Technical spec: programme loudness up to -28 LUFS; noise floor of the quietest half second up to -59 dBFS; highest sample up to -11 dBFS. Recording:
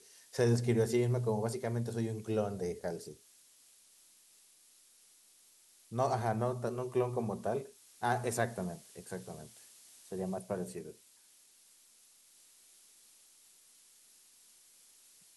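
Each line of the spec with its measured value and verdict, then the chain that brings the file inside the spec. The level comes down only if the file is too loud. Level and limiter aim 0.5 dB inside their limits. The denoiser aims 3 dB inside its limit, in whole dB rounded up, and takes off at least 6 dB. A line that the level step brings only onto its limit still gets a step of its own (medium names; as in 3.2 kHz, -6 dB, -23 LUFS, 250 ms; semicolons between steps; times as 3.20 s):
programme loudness -35.0 LUFS: pass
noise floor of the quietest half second -64 dBFS: pass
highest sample -16.5 dBFS: pass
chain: none needed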